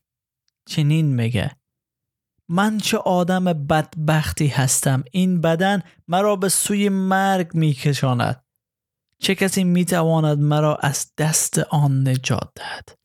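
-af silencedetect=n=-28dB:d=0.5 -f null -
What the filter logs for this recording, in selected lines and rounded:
silence_start: 0.00
silence_end: 0.70 | silence_duration: 0.70
silence_start: 1.49
silence_end: 2.50 | silence_duration: 1.01
silence_start: 8.34
silence_end: 9.23 | silence_duration: 0.89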